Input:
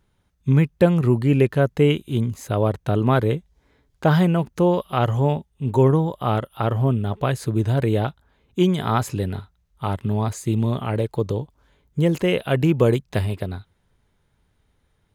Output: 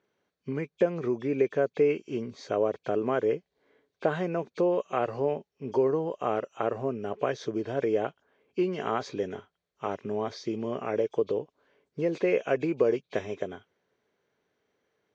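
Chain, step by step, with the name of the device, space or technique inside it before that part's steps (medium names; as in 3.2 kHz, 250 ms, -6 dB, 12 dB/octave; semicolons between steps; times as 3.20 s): hearing aid with frequency lowering (knee-point frequency compression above 2.2 kHz 1.5:1; compression 3:1, threshold -19 dBFS, peak gain reduction 8 dB; cabinet simulation 380–5400 Hz, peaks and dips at 430 Hz +4 dB, 890 Hz -8 dB, 1.3 kHz -5 dB, 1.9 kHz -3 dB, 2.9 kHz -8 dB, 5 kHz -7 dB)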